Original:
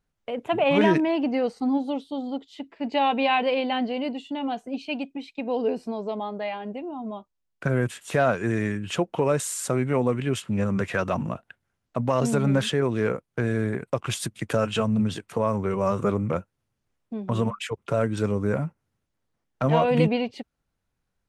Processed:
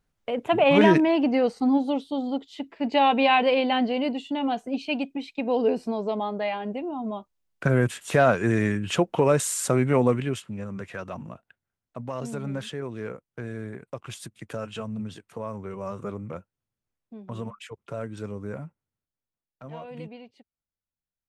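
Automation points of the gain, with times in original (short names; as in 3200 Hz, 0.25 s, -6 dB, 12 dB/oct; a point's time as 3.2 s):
10.11 s +2.5 dB
10.58 s -10 dB
18.63 s -10 dB
19.62 s -19 dB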